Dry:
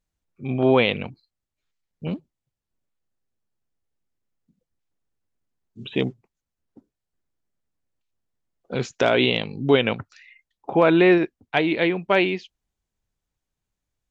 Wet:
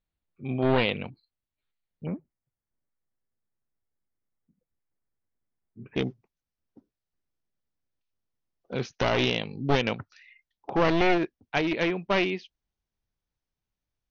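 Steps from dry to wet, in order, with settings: one-sided fold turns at -19.5 dBFS; steep low-pass 4600 Hz 96 dB/oct, from 2.05 s 2300 Hz, from 5.95 s 6300 Hz; gain -4.5 dB

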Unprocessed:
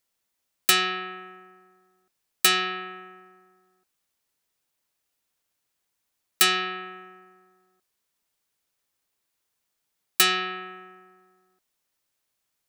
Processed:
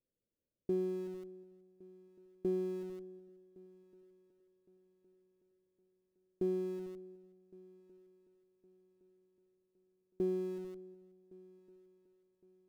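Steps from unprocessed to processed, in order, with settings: steep low-pass 580 Hz 72 dB/oct; in parallel at -12 dB: Schmitt trigger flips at -44.5 dBFS; on the sum: multi-head echo 0.371 s, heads first and third, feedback 57%, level -24 dB

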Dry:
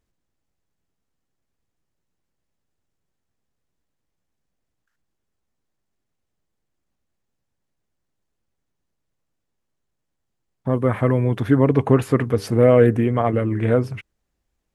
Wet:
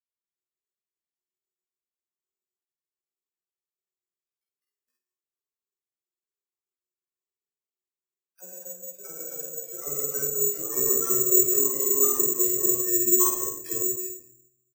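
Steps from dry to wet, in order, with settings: HPF 41 Hz 12 dB/oct; level quantiser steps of 19 dB; transient shaper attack +10 dB, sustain -2 dB; chorus 0.37 Hz, delay 15.5 ms, depth 3.5 ms; resonator 360 Hz, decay 0.17 s, harmonics odd, mix 100%; dispersion lows, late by 95 ms, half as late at 520 Hz; echoes that change speed 0.269 s, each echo +2 st, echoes 3, each echo -6 dB; doubler 49 ms -2 dB; reverb RT60 0.70 s, pre-delay 5 ms, DRR 2 dB; careless resampling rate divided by 6×, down none, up zero stuff

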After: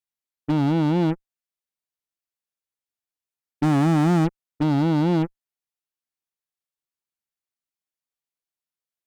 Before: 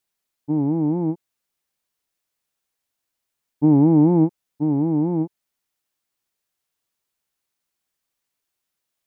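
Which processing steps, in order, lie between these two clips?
dynamic EQ 310 Hz, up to -6 dB, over -27 dBFS, Q 3.5; overloaded stage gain 20.5 dB; added harmonics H 7 -18 dB, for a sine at -20 dBFS; gain +5 dB

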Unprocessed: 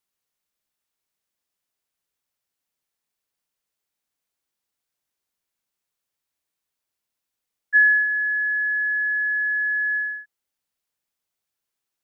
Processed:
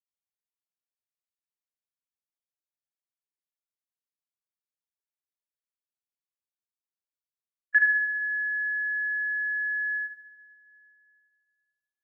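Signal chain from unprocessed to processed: gate with hold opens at -15 dBFS; flutter echo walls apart 6.3 m, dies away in 0.64 s; two-slope reverb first 0.62 s, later 3.2 s, from -18 dB, DRR 5.5 dB; gain -3.5 dB

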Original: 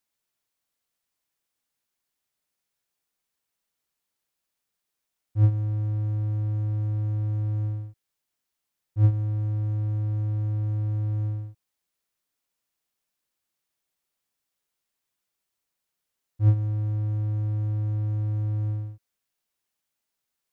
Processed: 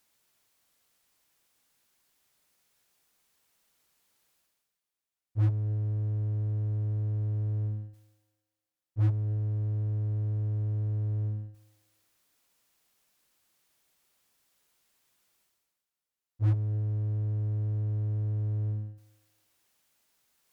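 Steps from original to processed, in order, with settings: dynamic EQ 130 Hz, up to +7 dB, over -37 dBFS, Q 1.5; reverse; upward compressor, threshold -47 dBFS; reverse; thinning echo 0.268 s, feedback 40%, high-pass 390 Hz, level -15 dB; added harmonics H 8 -27 dB, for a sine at -12 dBFS; gain -8.5 dB

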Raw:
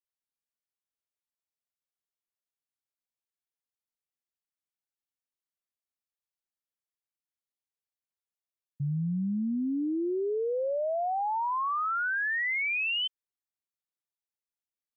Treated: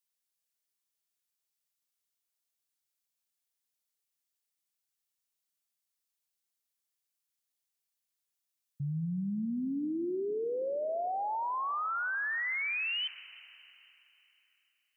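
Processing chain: high shelf 2500 Hz +12 dB; limiter -28.5 dBFS, peak gain reduction 9.5 dB; on a send: reverb RT60 3.3 s, pre-delay 15 ms, DRR 14.5 dB; on the sum: gain -2 dB

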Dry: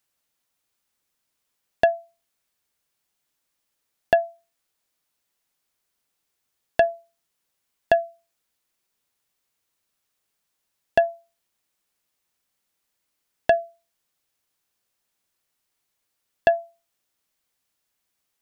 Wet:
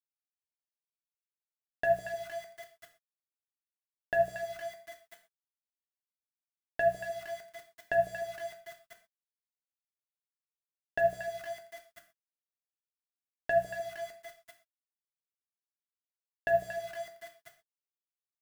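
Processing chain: low shelf 270 Hz +5.5 dB; notches 60/120/180 Hz; comb 6.7 ms, depth 33%; negative-ratio compressor -30 dBFS, ratio -1; split-band echo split 660 Hz, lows 0.152 s, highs 0.231 s, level -9 dB; sample gate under -48.5 dBFS; bell 1700 Hz +11 dB 0.61 oct; non-linear reverb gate 0.15 s falling, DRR 4 dB; gain +2.5 dB

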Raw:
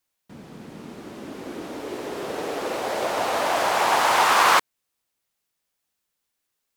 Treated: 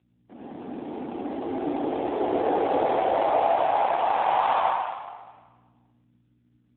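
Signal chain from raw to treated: bell 760 Hz +12 dB 0.61 oct; compressor 4:1, threshold -16 dBFS, peak gain reduction 8 dB; limiter -13.5 dBFS, peak gain reduction 6.5 dB; high-pass sweep 280 Hz -> 1300 Hz, 3.88–5.03; hum 60 Hz, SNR 32 dB; soft clip -16 dBFS, distortion -16 dB; reverb RT60 1.4 s, pre-delay 69 ms, DRR -6.5 dB; gain -6 dB; AMR-NB 7.4 kbps 8000 Hz

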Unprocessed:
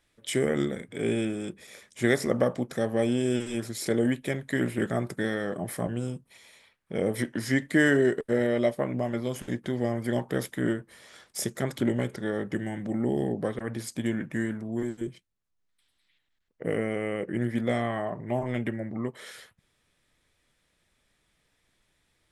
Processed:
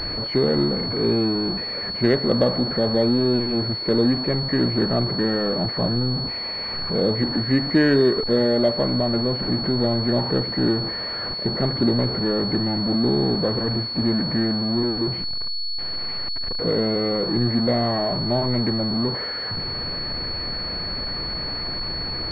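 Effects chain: zero-crossing step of -26 dBFS; air absorption 500 m; pulse-width modulation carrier 4400 Hz; gain +4.5 dB

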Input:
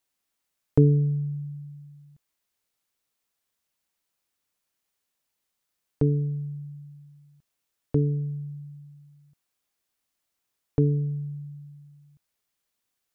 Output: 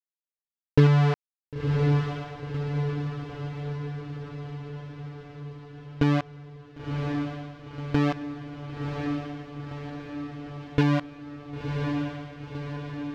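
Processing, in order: bit-crush 4-bit; air absorption 210 m; diffused feedback echo 1.018 s, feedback 63%, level -4 dB

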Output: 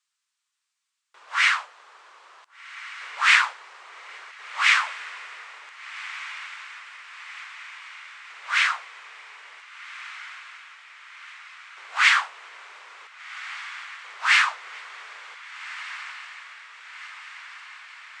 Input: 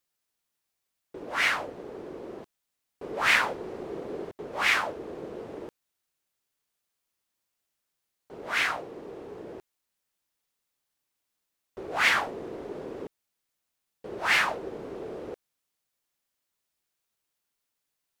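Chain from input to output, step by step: elliptic band-pass 1100–8200 Hz, stop band 80 dB; on a send: diffused feedback echo 1.557 s, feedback 67%, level -14.5 dB; on the sum: gain +6 dB

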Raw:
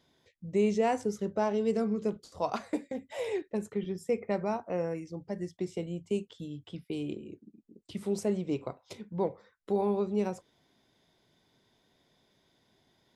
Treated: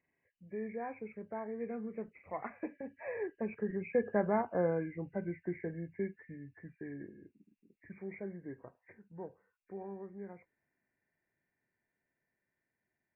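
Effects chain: nonlinear frequency compression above 1500 Hz 4:1; Doppler pass-by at 4.52, 13 m/s, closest 9.5 m; gain +1 dB

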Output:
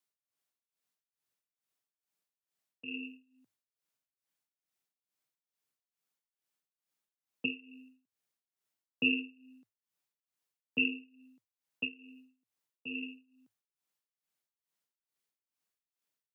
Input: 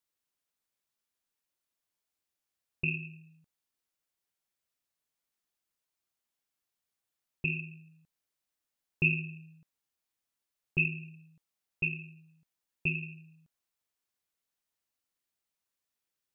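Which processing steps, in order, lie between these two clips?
frequency shift +98 Hz; tremolo 2.3 Hz, depth 87%

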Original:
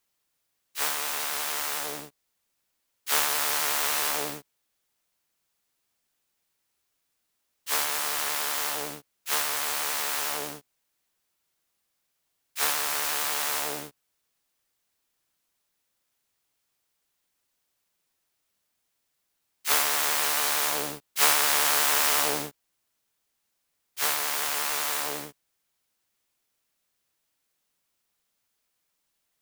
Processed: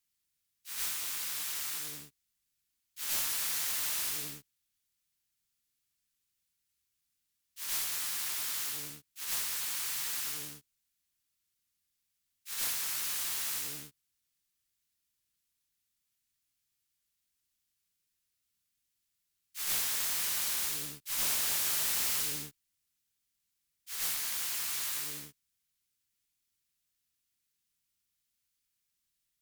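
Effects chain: passive tone stack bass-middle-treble 6-0-2; reverse echo 0.102 s -7.5 dB; added harmonics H 3 -9 dB, 6 -14 dB, 7 -11 dB, 8 -12 dB, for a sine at -19 dBFS; gain +3.5 dB

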